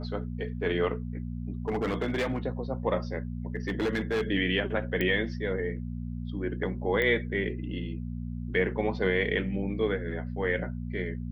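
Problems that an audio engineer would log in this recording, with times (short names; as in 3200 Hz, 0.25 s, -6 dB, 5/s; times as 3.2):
hum 60 Hz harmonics 4 -35 dBFS
1.68–2.38 clipped -24.5 dBFS
3.56–4.23 clipped -24 dBFS
5.01 pop -16 dBFS
7.02 pop -17 dBFS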